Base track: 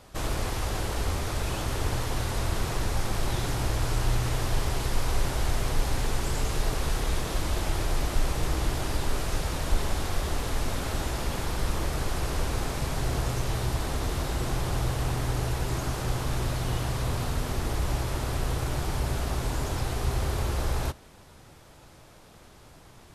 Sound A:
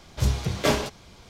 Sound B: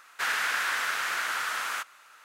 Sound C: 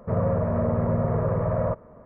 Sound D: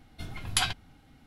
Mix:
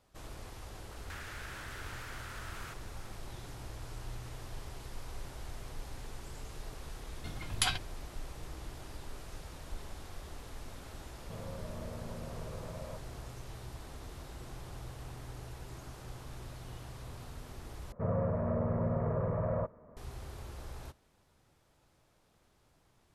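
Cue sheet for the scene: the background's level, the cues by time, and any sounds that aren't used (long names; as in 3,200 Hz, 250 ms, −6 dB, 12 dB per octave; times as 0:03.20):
base track −17.5 dB
0:00.91: mix in B −6 dB + downward compressor, threshold −39 dBFS
0:07.05: mix in D −4 dB
0:11.23: mix in C −12 dB + downward compressor 3 to 1, threshold −32 dBFS
0:17.92: overwrite with C −8.5 dB
not used: A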